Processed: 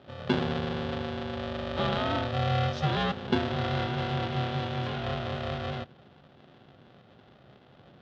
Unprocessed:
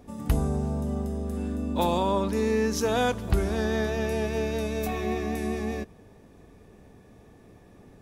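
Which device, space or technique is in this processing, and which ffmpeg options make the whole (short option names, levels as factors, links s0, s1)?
ring modulator pedal into a guitar cabinet: -af "aeval=exprs='val(0)*sgn(sin(2*PI*310*n/s))':c=same,highpass=81,equalizer=f=140:t=q:w=4:g=7,equalizer=f=450:t=q:w=4:g=-5,equalizer=f=990:t=q:w=4:g=-6,equalizer=f=2200:t=q:w=4:g=-6,equalizer=f=3400:t=q:w=4:g=5,lowpass=f=3900:w=0.5412,lowpass=f=3900:w=1.3066,volume=0.75"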